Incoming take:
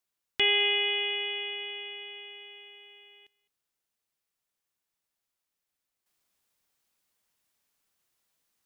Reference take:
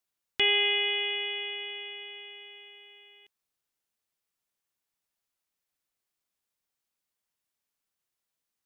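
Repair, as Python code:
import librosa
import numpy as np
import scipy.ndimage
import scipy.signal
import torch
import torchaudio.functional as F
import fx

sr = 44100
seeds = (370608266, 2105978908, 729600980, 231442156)

y = fx.fix_echo_inverse(x, sr, delay_ms=209, level_db=-22.5)
y = fx.gain(y, sr, db=fx.steps((0.0, 0.0), (6.06, -8.0)))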